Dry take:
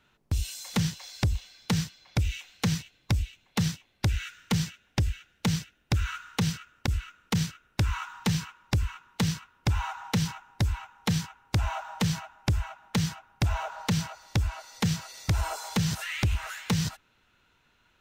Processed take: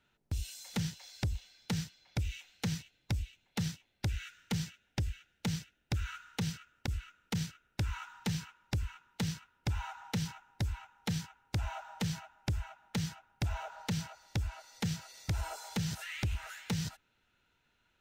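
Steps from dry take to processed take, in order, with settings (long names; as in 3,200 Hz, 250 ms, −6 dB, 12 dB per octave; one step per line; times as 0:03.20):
notch filter 1,100 Hz, Q 7.1
level −8 dB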